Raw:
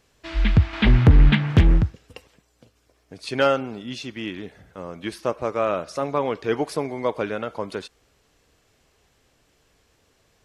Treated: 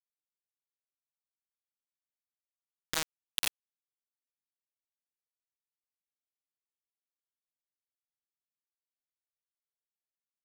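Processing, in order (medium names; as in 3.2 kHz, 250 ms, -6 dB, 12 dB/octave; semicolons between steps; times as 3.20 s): Doppler pass-by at 3.44 s, 48 m/s, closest 5.5 m; LFO high-pass saw down 1.2 Hz 880–3300 Hz; bit crusher 4-bit; trim +3.5 dB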